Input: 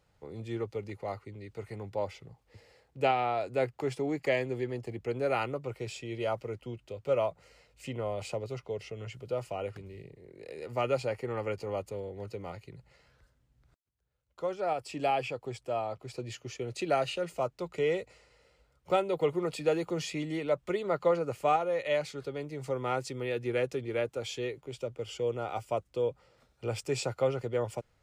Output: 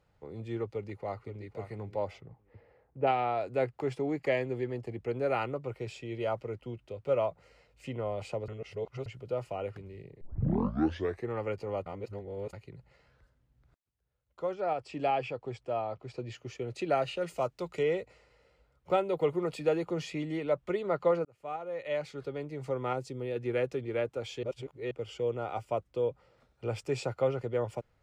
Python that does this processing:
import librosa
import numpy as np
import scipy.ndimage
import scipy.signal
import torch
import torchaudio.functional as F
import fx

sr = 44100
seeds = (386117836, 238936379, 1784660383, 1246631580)

y = fx.echo_throw(x, sr, start_s=0.67, length_s=0.78, ms=520, feedback_pct=15, wet_db=-10.0)
y = fx.lowpass(y, sr, hz=fx.line((2.2, 2400.0), (3.06, 1300.0)), slope=12, at=(2.2, 3.06), fade=0.02)
y = fx.lowpass(y, sr, hz=7100.0, slope=12, at=(14.54, 16.35))
y = fx.high_shelf(y, sr, hz=3100.0, db=9.5, at=(17.21, 17.83))
y = fx.high_shelf(y, sr, hz=8500.0, db=5.5, at=(19.02, 19.69))
y = fx.peak_eq(y, sr, hz=1700.0, db=-8.5, octaves=2.0, at=(22.93, 23.36))
y = fx.edit(y, sr, fx.reverse_span(start_s=8.48, length_s=0.58),
    fx.tape_start(start_s=10.21, length_s=1.09),
    fx.reverse_span(start_s=11.86, length_s=0.67),
    fx.fade_in_span(start_s=21.25, length_s=1.0),
    fx.reverse_span(start_s=24.43, length_s=0.48), tone=tone)
y = fx.high_shelf(y, sr, hz=4200.0, db=-10.5)